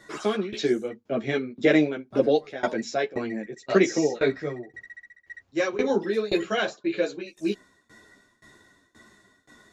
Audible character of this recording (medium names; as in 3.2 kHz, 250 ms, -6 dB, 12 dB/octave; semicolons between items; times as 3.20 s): tremolo saw down 1.9 Hz, depth 95%; a shimmering, thickened sound